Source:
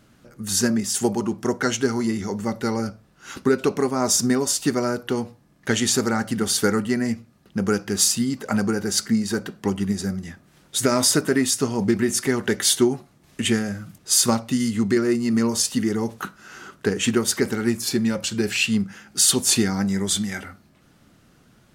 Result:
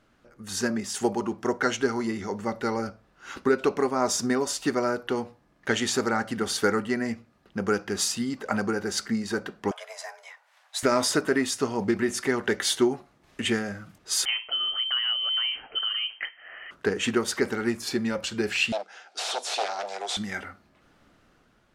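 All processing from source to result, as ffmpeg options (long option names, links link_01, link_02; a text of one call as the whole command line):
ffmpeg -i in.wav -filter_complex "[0:a]asettb=1/sr,asplit=3[link_01][link_02][link_03];[link_01]atrim=end=9.714[link_04];[link_02]atrim=start=9.71:end=10.83,asetpts=PTS-STARTPTS,afade=type=in:duration=0.004:curve=qsin,afade=type=out:start_time=1.116:duration=0.004:curve=qsin,highpass=frequency=480:width=0.5412,highpass=frequency=480:width=1.3066,afreqshift=240[link_05];[link_03]atrim=start=10.826[link_06];[link_04][link_05]acrossfade=duration=0.004:curve1=hsin:curve2=qsin[link_07];[link_07][link_06]acrossfade=duration=0.004:curve1=qsin:curve2=hsin,asettb=1/sr,asplit=3[link_08][link_09][link_10];[link_08]atrim=end=14.254[link_11];[link_09]atrim=start=14.25:end=16.71,asetpts=PTS-STARTPTS,afade=type=in:duration=0.004:curve=qsin,afade=type=out:start_time=2.456:duration=0.004:curve=qsin,highpass=130,lowpass=frequency=2800:width_type=q:width=0.5098,lowpass=frequency=2800:width_type=q:width=0.6013,lowpass=frequency=2800:width_type=q:width=0.9,lowpass=frequency=2800:width_type=q:width=2.563,afreqshift=-3300,acompressor=threshold=-23dB:ratio=2:attack=3.2:release=140:knee=1:detection=peak[link_12];[link_10]atrim=start=16.706[link_13];[link_11][link_12]acrossfade=duration=0.004:curve1=hsin:curve2=qsin[link_14];[link_14][link_13]acrossfade=duration=0.004:curve1=qsin:curve2=hsin,asettb=1/sr,asplit=3[link_15][link_16][link_17];[link_15]atrim=end=18.724[link_18];[link_16]atrim=start=18.72:end=20.17,asetpts=PTS-STARTPTS,afade=type=in:duration=0.004:curve=qsin,afade=type=out:start_time=1.446:duration=0.004:curve=qsin,aeval=exprs='0.1*(abs(mod(val(0)/0.1+3,4)-2)-1)':channel_layout=same,highpass=frequency=450:width=0.5412,highpass=frequency=450:width=1.3066,equalizer=frequency=720:width_type=q:width=4:gain=9,equalizer=frequency=1100:width_type=q:width=4:gain=-5,equalizer=frequency=1900:width_type=q:width=4:gain=-5,equalizer=frequency=3800:width_type=q:width=4:gain=6,equalizer=frequency=5500:width_type=q:width=4:gain=4,lowpass=frequency=9500:width=0.5412,lowpass=frequency=9500:width=1.3066[link_19];[link_17]atrim=start=20.166[link_20];[link_18][link_19]acrossfade=duration=0.004:curve1=hsin:curve2=qsin[link_21];[link_21][link_20]acrossfade=duration=0.004:curve1=qsin:curve2=hsin,lowpass=frequency=2200:poles=1,equalizer=frequency=140:width=0.55:gain=-11,dynaudnorm=framelen=130:gausssize=9:maxgain=4dB,volume=-2.5dB" out.wav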